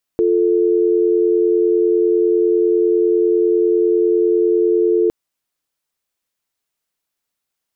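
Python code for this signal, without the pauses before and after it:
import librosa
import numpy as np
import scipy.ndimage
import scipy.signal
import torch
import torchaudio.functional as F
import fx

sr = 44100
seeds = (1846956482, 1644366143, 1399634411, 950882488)

y = fx.call_progress(sr, length_s=4.91, kind='dial tone', level_db=-14.5)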